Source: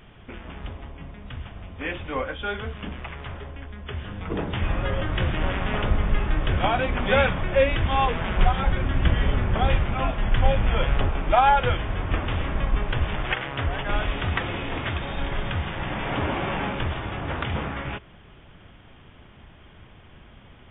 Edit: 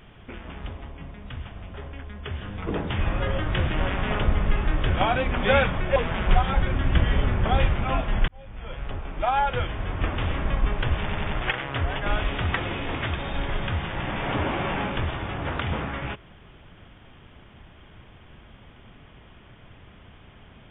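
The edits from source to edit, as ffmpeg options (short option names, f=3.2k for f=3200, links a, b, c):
-filter_complex "[0:a]asplit=7[a][b][c][d][e][f][g];[a]atrim=end=1.742[h];[b]atrim=start=3.368:end=7.592[i];[c]atrim=start=8.058:end=10.38,asetpts=PTS-STARTPTS,afade=t=out:st=2.318:d=0.004:c=hsin[j];[d]atrim=start=10.38:end=13.192,asetpts=PTS-STARTPTS,afade=t=in:d=2[k];[e]atrim=start=13.098:end=13.192[l];[f]atrim=start=13.098:end=13.192[m];[g]atrim=start=13.098[n];[h][i]acrossfade=d=0.004:c1=hsin:c2=hsin[o];[j][k]concat=n=2:v=0:a=1[p];[o][p]acrossfade=d=0.004:c1=hsin:c2=hsin[q];[q][l]acrossfade=d=0.004:c1=hsin:c2=hsin[r];[r][m]acrossfade=d=0.004:c1=hsin:c2=hsin[s];[s][n]acrossfade=d=0.004:c1=hsin:c2=hsin"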